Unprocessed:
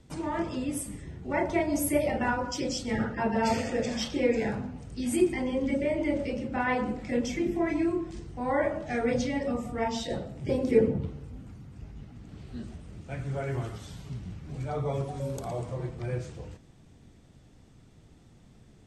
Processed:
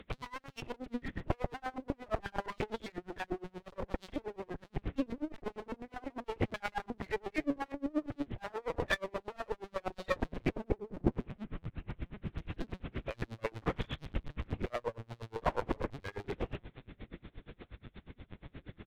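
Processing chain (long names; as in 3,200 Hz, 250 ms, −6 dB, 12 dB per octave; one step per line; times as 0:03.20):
high-frequency loss of the air 78 metres
double-tracking delay 45 ms −12 dB
treble cut that deepens with the level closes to 810 Hz, closed at −25.5 dBFS
convolution reverb, pre-delay 33 ms, DRR 5 dB
phase-vocoder pitch shift with formants kept −3.5 semitones
compressor whose output falls as the input rises −37 dBFS, ratio −1
linear-prediction vocoder at 8 kHz pitch kept
asymmetric clip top −46 dBFS
tremolo with a sine in dB 8.4 Hz, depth 30 dB
level +15 dB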